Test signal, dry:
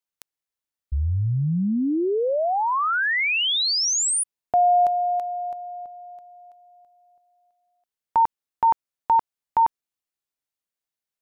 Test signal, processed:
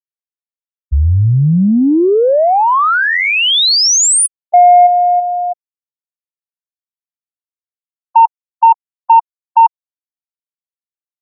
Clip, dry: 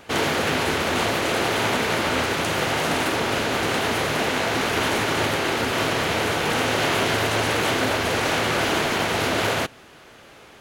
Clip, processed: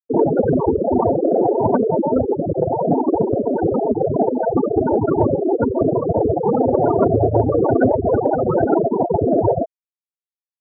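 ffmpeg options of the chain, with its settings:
ffmpeg -i in.wav -filter_complex "[0:a]acrossover=split=2000[link_01][link_02];[link_02]adelay=30[link_03];[link_01][link_03]amix=inputs=2:normalize=0,afftfilt=real='re*gte(hypot(re,im),0.251)':imag='im*gte(hypot(re,im),0.251)':win_size=1024:overlap=0.75,acontrast=82,volume=5.5dB" out.wav

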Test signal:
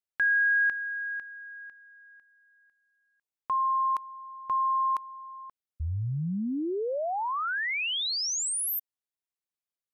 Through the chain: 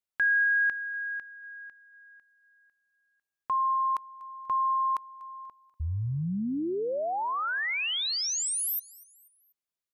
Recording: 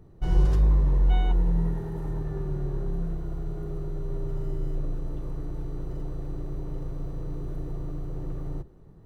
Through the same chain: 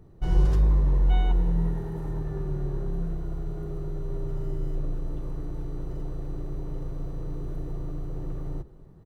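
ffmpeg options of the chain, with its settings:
ffmpeg -i in.wav -af "aecho=1:1:243|486|729:0.0794|0.0342|0.0147" out.wav

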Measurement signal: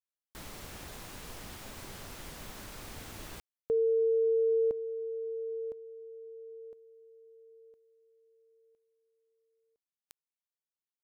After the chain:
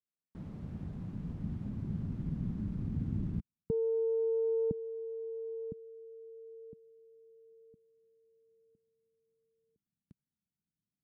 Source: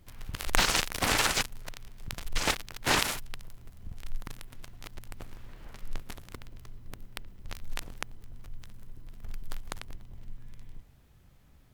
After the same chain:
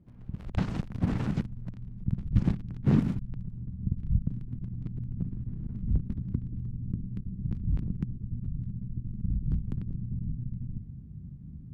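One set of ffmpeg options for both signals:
ffmpeg -i in.wav -af "asubboost=boost=11:cutoff=190,aeval=exprs='1.06*(cos(1*acos(clip(val(0)/1.06,-1,1)))-cos(1*PI/2))+0.299*(cos(3*acos(clip(val(0)/1.06,-1,1)))-cos(3*PI/2))+0.188*(cos(6*acos(clip(val(0)/1.06,-1,1)))-cos(6*PI/2))+0.299*(cos(7*acos(clip(val(0)/1.06,-1,1)))-cos(7*PI/2))':channel_layout=same,bandpass=frequency=190:width_type=q:width=1.8:csg=0,volume=3dB" out.wav

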